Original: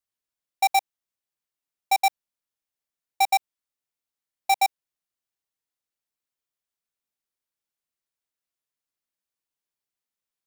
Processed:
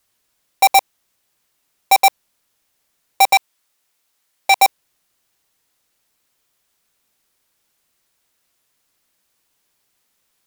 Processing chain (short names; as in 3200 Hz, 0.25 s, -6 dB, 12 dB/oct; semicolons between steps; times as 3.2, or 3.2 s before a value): 3.33–4.58 low shelf 350 Hz -8.5 dB; in parallel at -11 dB: sine folder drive 17 dB, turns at -12 dBFS; on the sum: gain +9 dB